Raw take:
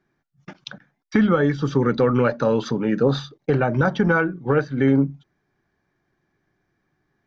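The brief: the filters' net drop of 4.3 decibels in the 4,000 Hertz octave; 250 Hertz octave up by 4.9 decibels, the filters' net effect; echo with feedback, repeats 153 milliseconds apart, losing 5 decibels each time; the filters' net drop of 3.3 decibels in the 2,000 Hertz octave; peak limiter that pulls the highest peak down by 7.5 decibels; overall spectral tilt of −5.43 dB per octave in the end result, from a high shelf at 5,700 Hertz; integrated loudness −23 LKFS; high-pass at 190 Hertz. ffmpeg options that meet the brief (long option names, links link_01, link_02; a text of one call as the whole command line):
ffmpeg -i in.wav -af "highpass=190,equalizer=frequency=250:width_type=o:gain=7.5,equalizer=frequency=2000:width_type=o:gain=-5,equalizer=frequency=4000:width_type=o:gain=-5,highshelf=frequency=5700:gain=4,alimiter=limit=-9.5dB:level=0:latency=1,aecho=1:1:153|306|459|612|765|918|1071:0.562|0.315|0.176|0.0988|0.0553|0.031|0.0173,volume=-4.5dB" out.wav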